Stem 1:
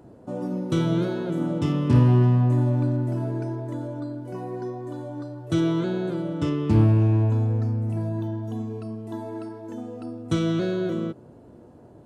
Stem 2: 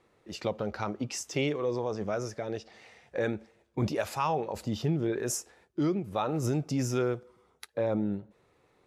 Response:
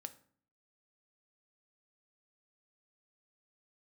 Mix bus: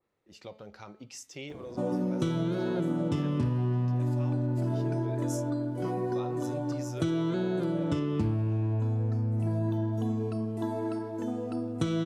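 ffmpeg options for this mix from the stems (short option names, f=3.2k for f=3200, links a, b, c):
-filter_complex "[0:a]adelay=1500,volume=2dB[a];[1:a]bandreject=f=216.1:t=h:w=4,bandreject=f=432.2:t=h:w=4,bandreject=f=648.3:t=h:w=4,bandreject=f=864.4:t=h:w=4,bandreject=f=1.0805k:t=h:w=4,bandreject=f=1.2966k:t=h:w=4,bandreject=f=1.5127k:t=h:w=4,bandreject=f=1.7288k:t=h:w=4,bandreject=f=1.9449k:t=h:w=4,bandreject=f=2.161k:t=h:w=4,bandreject=f=2.3771k:t=h:w=4,bandreject=f=2.5932k:t=h:w=4,bandreject=f=2.8093k:t=h:w=4,bandreject=f=3.0254k:t=h:w=4,bandreject=f=3.2415k:t=h:w=4,bandreject=f=3.4576k:t=h:w=4,bandreject=f=3.6737k:t=h:w=4,bandreject=f=3.8898k:t=h:w=4,bandreject=f=4.1059k:t=h:w=4,bandreject=f=4.322k:t=h:w=4,bandreject=f=4.5381k:t=h:w=4,bandreject=f=4.7542k:t=h:w=4,adynamicequalizer=threshold=0.00447:dfrequency=2200:dqfactor=0.7:tfrequency=2200:tqfactor=0.7:attack=5:release=100:ratio=0.375:range=3:mode=boostabove:tftype=highshelf,volume=-16.5dB,asplit=2[b][c];[c]volume=-3dB[d];[2:a]atrim=start_sample=2205[e];[d][e]afir=irnorm=-1:irlink=0[f];[a][b][f]amix=inputs=3:normalize=0,acompressor=threshold=-25dB:ratio=12"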